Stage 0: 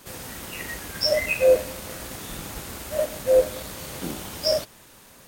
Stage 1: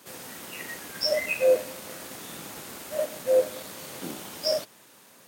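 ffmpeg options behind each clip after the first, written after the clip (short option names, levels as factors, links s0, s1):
-af "highpass=180,volume=0.668"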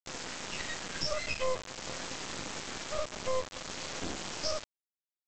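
-af "bandreject=f=3700:w=11,acompressor=threshold=0.0178:ratio=3,aresample=16000,acrusher=bits=4:dc=4:mix=0:aa=0.000001,aresample=44100,volume=1.78"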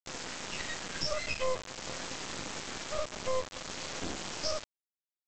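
-af anull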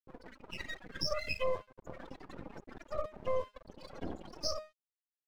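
-af "afftfilt=real='re*gte(hypot(re,im),0.0224)':imag='im*gte(hypot(re,im),0.0224)':win_size=1024:overlap=0.75,bandreject=f=206.8:t=h:w=4,bandreject=f=413.6:t=h:w=4,bandreject=f=620.4:t=h:w=4,bandreject=f=827.2:t=h:w=4,bandreject=f=1034:t=h:w=4,bandreject=f=1240.8:t=h:w=4,bandreject=f=1447.6:t=h:w=4,bandreject=f=1654.4:t=h:w=4,bandreject=f=1861.2:t=h:w=4,bandreject=f=2068:t=h:w=4,bandreject=f=2274.8:t=h:w=4,bandreject=f=2481.6:t=h:w=4,bandreject=f=2688.4:t=h:w=4,bandreject=f=2895.2:t=h:w=4,bandreject=f=3102:t=h:w=4,bandreject=f=3308.8:t=h:w=4,bandreject=f=3515.6:t=h:w=4,bandreject=f=3722.4:t=h:w=4,bandreject=f=3929.2:t=h:w=4,bandreject=f=4136:t=h:w=4,bandreject=f=4342.8:t=h:w=4,bandreject=f=4549.6:t=h:w=4,bandreject=f=4756.4:t=h:w=4,aeval=exprs='sgn(val(0))*max(abs(val(0))-0.00251,0)':c=same"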